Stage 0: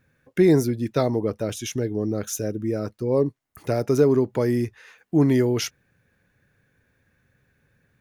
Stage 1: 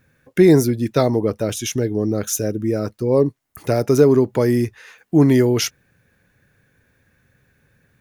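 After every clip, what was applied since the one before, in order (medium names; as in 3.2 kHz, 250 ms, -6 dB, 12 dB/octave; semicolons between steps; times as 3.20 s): treble shelf 6.3 kHz +4 dB; trim +5 dB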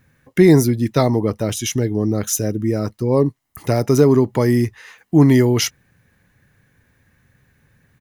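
comb 1 ms, depth 31%; trim +1.5 dB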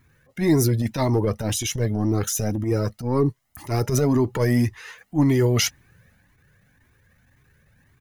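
transient shaper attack -12 dB, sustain +3 dB; loudness maximiser +8 dB; Shepard-style flanger rising 1.9 Hz; trim -5 dB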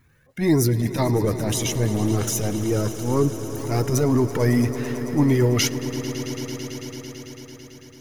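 echo with a slow build-up 111 ms, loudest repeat 5, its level -16 dB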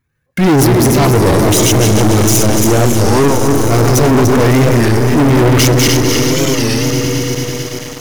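backward echo that repeats 147 ms, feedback 59%, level -3.5 dB; waveshaping leveller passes 5; warped record 33 1/3 rpm, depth 160 cents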